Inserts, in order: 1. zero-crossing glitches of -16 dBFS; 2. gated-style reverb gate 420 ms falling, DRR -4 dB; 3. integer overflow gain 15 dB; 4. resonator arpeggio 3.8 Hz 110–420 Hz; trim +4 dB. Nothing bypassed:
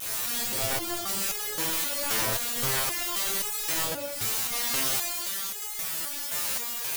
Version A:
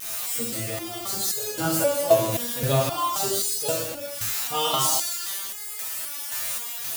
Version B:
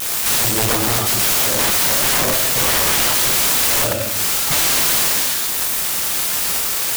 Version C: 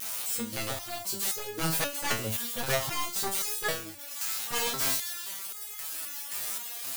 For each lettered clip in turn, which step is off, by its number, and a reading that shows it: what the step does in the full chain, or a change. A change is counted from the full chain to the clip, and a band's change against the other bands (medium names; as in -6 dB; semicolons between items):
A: 3, crest factor change +6.0 dB; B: 4, 125 Hz band +2.0 dB; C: 2, momentary loudness spread change +3 LU